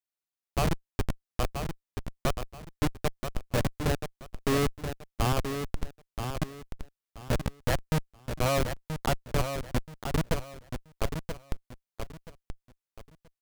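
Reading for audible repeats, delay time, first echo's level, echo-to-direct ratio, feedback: 3, 979 ms, -7.5 dB, -7.0 dB, 26%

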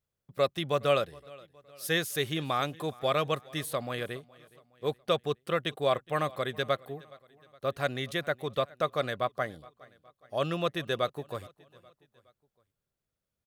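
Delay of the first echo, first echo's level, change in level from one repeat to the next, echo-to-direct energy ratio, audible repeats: 417 ms, -23.0 dB, -6.0 dB, -22.0 dB, 2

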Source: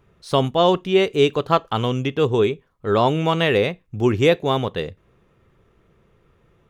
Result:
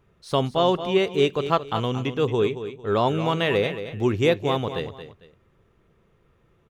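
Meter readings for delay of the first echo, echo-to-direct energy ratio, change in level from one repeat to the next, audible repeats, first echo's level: 225 ms, -10.5 dB, -11.0 dB, 2, -11.0 dB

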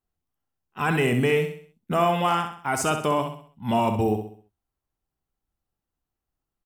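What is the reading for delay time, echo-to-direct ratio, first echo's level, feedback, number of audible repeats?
65 ms, -6.5 dB, -7.5 dB, 41%, 4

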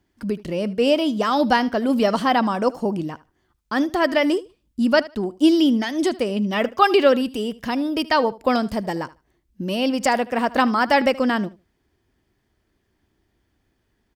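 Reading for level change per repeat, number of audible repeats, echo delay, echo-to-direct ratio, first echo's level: -15.5 dB, 2, 76 ms, -19.5 dB, -19.5 dB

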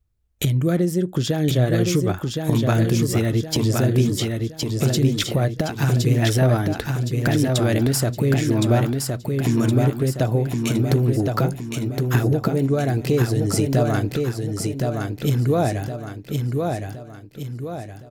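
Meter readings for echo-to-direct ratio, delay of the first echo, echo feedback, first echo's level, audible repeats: -3.0 dB, 1066 ms, 44%, -4.0 dB, 5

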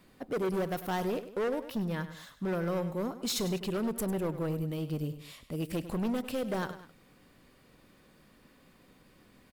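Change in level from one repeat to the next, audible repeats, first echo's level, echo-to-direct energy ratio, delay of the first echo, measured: -6.0 dB, 2, -13.0 dB, -12.0 dB, 100 ms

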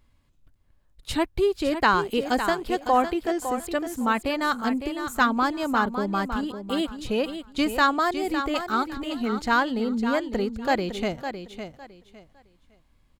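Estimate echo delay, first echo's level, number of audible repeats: 557 ms, -9.0 dB, 3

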